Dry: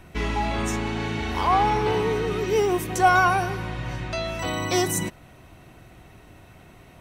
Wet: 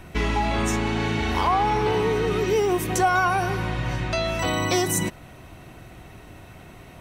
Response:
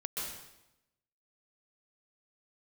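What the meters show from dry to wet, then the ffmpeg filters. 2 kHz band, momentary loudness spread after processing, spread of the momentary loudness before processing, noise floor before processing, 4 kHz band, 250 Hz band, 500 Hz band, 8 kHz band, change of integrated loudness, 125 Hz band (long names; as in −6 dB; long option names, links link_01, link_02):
−0.5 dB, 5 LU, 10 LU, −50 dBFS, +2.0 dB, +2.0 dB, +1.0 dB, +2.0 dB, +0.5 dB, +2.5 dB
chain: -af "acompressor=threshold=-24dB:ratio=3,volume=4.5dB"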